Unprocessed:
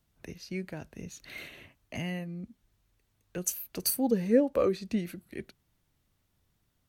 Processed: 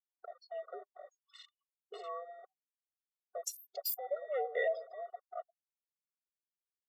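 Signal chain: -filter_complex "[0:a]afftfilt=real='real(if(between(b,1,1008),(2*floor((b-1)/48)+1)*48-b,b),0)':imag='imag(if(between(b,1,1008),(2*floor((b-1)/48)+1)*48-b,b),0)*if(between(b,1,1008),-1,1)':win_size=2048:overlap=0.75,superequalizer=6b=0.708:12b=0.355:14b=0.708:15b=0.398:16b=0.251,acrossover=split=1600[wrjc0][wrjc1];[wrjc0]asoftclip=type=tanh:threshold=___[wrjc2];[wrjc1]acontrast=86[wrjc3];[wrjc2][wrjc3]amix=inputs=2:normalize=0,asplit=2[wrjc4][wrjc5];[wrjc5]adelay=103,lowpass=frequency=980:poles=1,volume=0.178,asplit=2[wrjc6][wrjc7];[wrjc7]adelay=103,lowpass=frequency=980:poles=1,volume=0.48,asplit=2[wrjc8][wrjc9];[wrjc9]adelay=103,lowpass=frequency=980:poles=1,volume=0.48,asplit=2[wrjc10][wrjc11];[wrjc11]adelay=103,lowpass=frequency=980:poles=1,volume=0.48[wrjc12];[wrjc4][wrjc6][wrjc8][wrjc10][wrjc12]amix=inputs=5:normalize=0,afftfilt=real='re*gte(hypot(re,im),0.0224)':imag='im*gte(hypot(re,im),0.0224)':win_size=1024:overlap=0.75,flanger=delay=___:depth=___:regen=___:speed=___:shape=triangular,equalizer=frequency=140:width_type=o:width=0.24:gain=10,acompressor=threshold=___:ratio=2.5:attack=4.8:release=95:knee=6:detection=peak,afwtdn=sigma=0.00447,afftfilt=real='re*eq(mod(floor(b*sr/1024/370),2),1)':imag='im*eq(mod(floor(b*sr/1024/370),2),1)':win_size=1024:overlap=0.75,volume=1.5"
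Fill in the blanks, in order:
0.0891, 4, 1.3, 63, 0.37, 0.02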